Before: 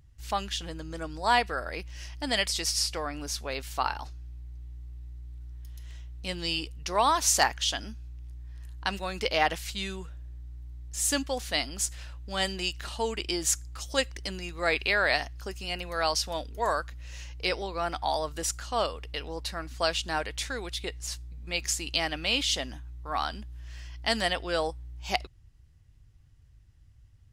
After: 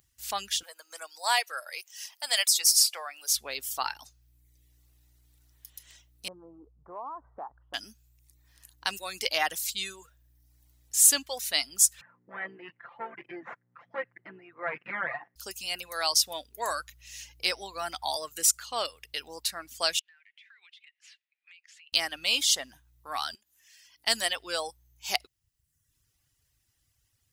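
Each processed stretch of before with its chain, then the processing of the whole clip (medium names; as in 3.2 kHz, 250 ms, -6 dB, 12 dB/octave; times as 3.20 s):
0.63–3.33 s: high-pass 550 Hz 24 dB/octave + treble shelf 11 kHz +4.5 dB
6.28–7.74 s: steep low-pass 1.2 kHz 48 dB/octave + compression 2.5:1, threshold -36 dBFS
12.01–15.36 s: comb filter that takes the minimum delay 5.8 ms + Chebyshev band-pass 130–2000 Hz, order 4
16.70–18.17 s: bass shelf 110 Hz +7 dB + band-stop 440 Hz, Q 8.4
19.99–21.93 s: Butterworth band-pass 2.2 kHz, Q 1.7 + compression 8:1, threshold -52 dBFS
23.35–24.07 s: high-pass 510 Hz 6 dB/octave + compression, threshold -54 dBFS
whole clip: RIAA curve recording; reverb removal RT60 0.84 s; peaking EQ 14 kHz +2 dB; trim -3 dB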